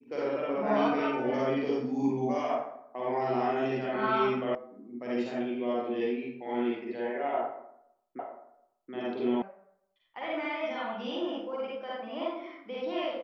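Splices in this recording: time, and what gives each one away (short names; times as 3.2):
4.55 sound cut off
8.19 repeat of the last 0.73 s
9.42 sound cut off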